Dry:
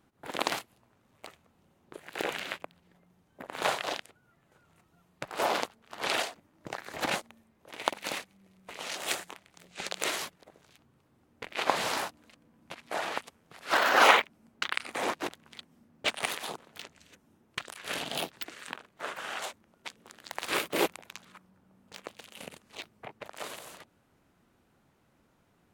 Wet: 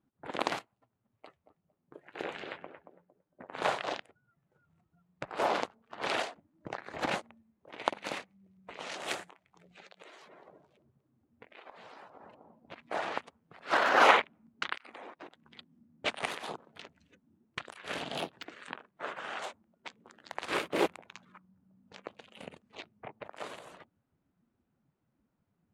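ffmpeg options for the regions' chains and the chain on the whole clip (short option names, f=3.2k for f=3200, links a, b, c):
-filter_complex "[0:a]asettb=1/sr,asplit=3[a][b][c];[a]atrim=end=0.594[d];[b]atrim=start=0.59:end=3.54,asetpts=PTS-STARTPTS,afade=t=in:d=0.004:c=qsin,afade=t=out:st=2.946:d=0.004:c=qsin,flanger=delay=6.6:depth=4.9:regen=-62:speed=1.5:shape=sinusoidal,asplit=2[e][f];[f]adelay=228,lowpass=f=1.3k:p=1,volume=-7dB,asplit=2[g][h];[h]adelay=228,lowpass=f=1.3k:p=1,volume=0.43,asplit=2[i][j];[j]adelay=228,lowpass=f=1.3k:p=1,volume=0.43,asplit=2[k][l];[l]adelay=228,lowpass=f=1.3k:p=1,volume=0.43,asplit=2[m][n];[n]adelay=228,lowpass=f=1.3k:p=1,volume=0.43[o];[e][g][i][k][m][o]amix=inputs=6:normalize=0,atrim=end_sample=130095[p];[c]atrim=start=3.536[q];[d][p]acrossfade=d=0.004:c1=hsin:c2=qsin[r];[r][q]acrossfade=d=0.004:c1=qsin:c2=hsin,asettb=1/sr,asplit=3[s][t][u];[s]atrim=end=9.294[v];[t]atrim=start=9.29:end=12.72,asetpts=PTS-STARTPTS,afade=t=in:d=0.004:c=qsin,afade=t=out:st=3.426:d=0.004:c=qsin,asplit=2[w][x];[x]adelay=238,lowpass=f=930:p=1,volume=-14dB,asplit=2[y][z];[z]adelay=238,lowpass=f=930:p=1,volume=0.5,asplit=2[aa][ab];[ab]adelay=238,lowpass=f=930:p=1,volume=0.5,asplit=2[ac][ad];[ad]adelay=238,lowpass=f=930:p=1,volume=0.5,asplit=2[ae][af];[af]adelay=238,lowpass=f=930:p=1,volume=0.5[ag];[w][y][aa][ac][ae][ag]amix=inputs=6:normalize=0,atrim=end_sample=151263,acompressor=threshold=-46dB:ratio=8:attack=3.2:release=140:knee=1:detection=peak,bandreject=f=50:t=h:w=6,bandreject=f=100:t=h:w=6,bandreject=f=150:t=h:w=6,bandreject=f=200:t=h:w=6,bandreject=f=250:t=h:w=6,bandreject=f=300:t=h:w=6,bandreject=f=350:t=h:w=6[ah];[u]atrim=start=12.716[ai];[v][ah]acrossfade=d=0.004:c1=hsin:c2=qsin[aj];[aj][ai]acrossfade=d=0.004:c1=qsin:c2=hsin,asettb=1/sr,asplit=3[ak][al][am];[ak]atrim=end=14.754[an];[al]atrim=start=14.75:end=15.45,asetpts=PTS-STARTPTS,afade=t=in:d=0.004:c=qsin,afade=t=out:st=0.696:d=0.004:c=qsin,acompressor=threshold=-41dB:ratio=16:attack=3.2:release=140:knee=1:detection=peak,lowshelf=f=210:g=-4.5[ao];[am]atrim=start=15.446[ap];[an][ao]acrossfade=d=0.004:c1=hsin:c2=qsin[aq];[aq][ap]acrossfade=d=0.004:c1=qsin:c2=hsin,afftdn=nr=14:nf=-55,lowpass=9.9k,highshelf=f=2.8k:g=-8.5"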